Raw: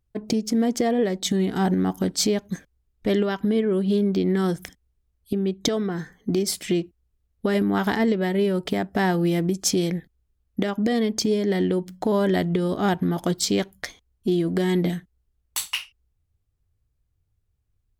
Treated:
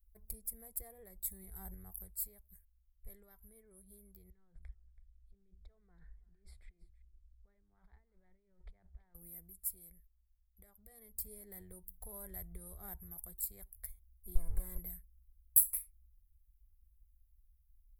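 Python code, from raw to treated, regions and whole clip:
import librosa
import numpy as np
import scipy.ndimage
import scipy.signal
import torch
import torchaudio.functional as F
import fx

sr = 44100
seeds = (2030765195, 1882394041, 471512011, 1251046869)

y = fx.chain(x, sr, fx.lowpass(hz=3500.0, slope=24),
    fx.over_compress(threshold_db=-33.0, ratio=-1.0),
    fx.echo_single(ms=329, db=-18.5), at=(4.3, 9.15))
y = fx.chain(y, sr, fx.lower_of_two(delay_ms=1.9),
    fx.high_shelf(hz=12000.0, db=-7.0),
    fx.env_flatten(amount_pct=50), at=(14.35, 14.78))
y = scipy.signal.sosfilt(scipy.signal.cheby2(4, 40, [110.0, 6500.0], 'bandstop', fs=sr, output='sos'), y)
y = fx.peak_eq(y, sr, hz=2200.0, db=9.0, octaves=0.4)
y = fx.rider(y, sr, range_db=5, speed_s=0.5)
y = y * 10.0 ** (4.0 / 20.0)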